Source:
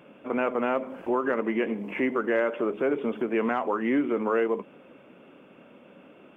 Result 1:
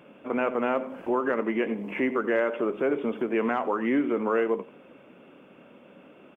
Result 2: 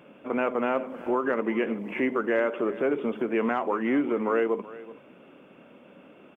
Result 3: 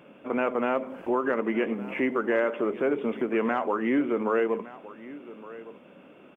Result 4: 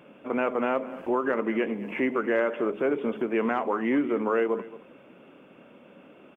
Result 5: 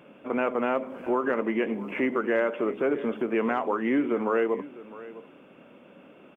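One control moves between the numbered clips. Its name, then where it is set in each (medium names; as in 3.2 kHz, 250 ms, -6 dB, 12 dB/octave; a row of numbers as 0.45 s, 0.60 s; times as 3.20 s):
delay, time: 89 ms, 378 ms, 1164 ms, 223 ms, 656 ms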